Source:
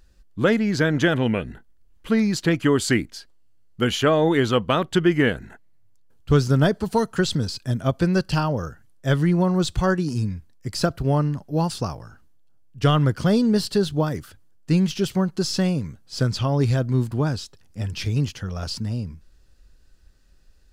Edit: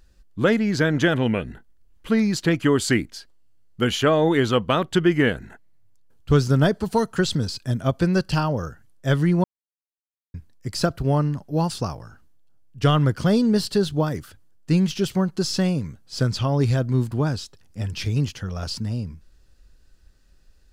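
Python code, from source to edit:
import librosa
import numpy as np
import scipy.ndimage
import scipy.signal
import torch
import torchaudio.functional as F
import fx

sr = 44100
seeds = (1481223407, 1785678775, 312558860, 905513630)

y = fx.edit(x, sr, fx.silence(start_s=9.44, length_s=0.9), tone=tone)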